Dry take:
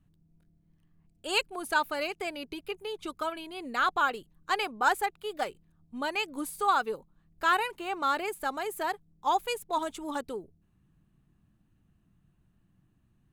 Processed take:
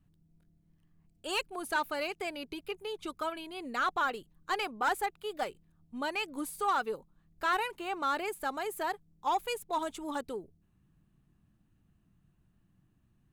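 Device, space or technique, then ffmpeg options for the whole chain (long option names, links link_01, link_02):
saturation between pre-emphasis and de-emphasis: -af "highshelf=frequency=2900:gain=12,asoftclip=type=tanh:threshold=-19dB,highshelf=frequency=2900:gain=-12,volume=-1.5dB"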